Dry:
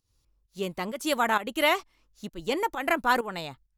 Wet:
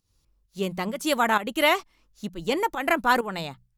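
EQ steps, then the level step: bell 180 Hz +5 dB 0.52 oct; notches 60/120/180 Hz; +2.5 dB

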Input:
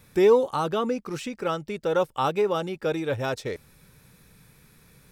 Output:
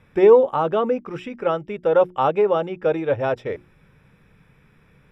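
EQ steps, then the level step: notches 60/120/180/240/300/360 Hz; dynamic EQ 610 Hz, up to +7 dB, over -36 dBFS, Q 1.2; polynomial smoothing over 25 samples; +1.5 dB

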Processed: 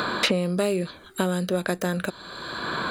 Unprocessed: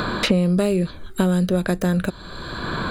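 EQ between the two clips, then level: HPF 430 Hz 6 dB/oct; 0.0 dB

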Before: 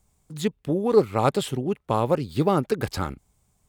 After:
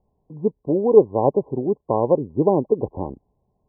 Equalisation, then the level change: brick-wall FIR low-pass 1100 Hz; bell 440 Hz +10.5 dB 2.2 oct; -4.5 dB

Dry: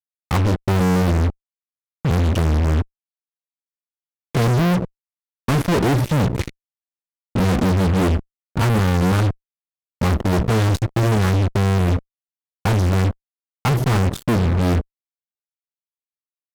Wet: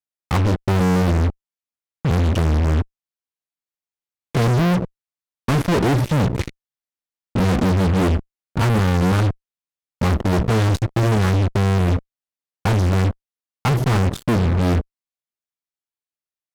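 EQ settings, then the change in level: high shelf 11000 Hz -5.5 dB; 0.0 dB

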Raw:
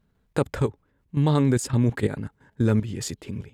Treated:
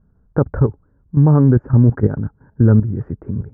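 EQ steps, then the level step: elliptic low-pass 1500 Hz, stop band 60 dB; low shelf 230 Hz +11.5 dB; +3.0 dB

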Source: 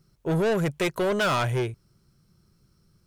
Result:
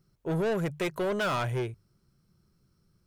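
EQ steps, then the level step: bell 6800 Hz -3 dB 2.5 oct; notches 50/100/150 Hz; -4.5 dB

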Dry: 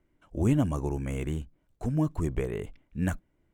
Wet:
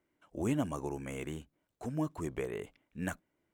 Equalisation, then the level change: HPF 370 Hz 6 dB/oct; -2.0 dB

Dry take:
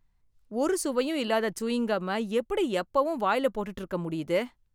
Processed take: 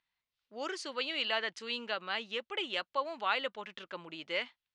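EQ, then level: band-pass 3400 Hz, Q 1.3; air absorption 120 m; +6.5 dB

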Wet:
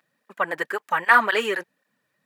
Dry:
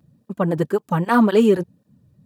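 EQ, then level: HPF 720 Hz 12 dB/oct; bell 1900 Hz +14.5 dB 1 oct; -1.0 dB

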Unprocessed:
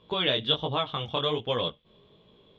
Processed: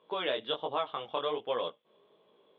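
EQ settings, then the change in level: BPF 470–3200 Hz; high shelf 2000 Hz -10 dB; 0.0 dB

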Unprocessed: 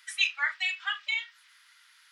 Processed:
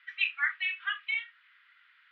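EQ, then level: HPF 1200 Hz 24 dB/oct; LPF 3000 Hz 24 dB/oct; air absorption 160 m; +1.5 dB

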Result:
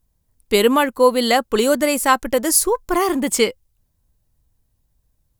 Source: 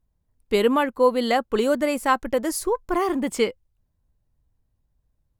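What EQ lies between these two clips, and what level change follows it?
high shelf 4100 Hz +12 dB; +4.0 dB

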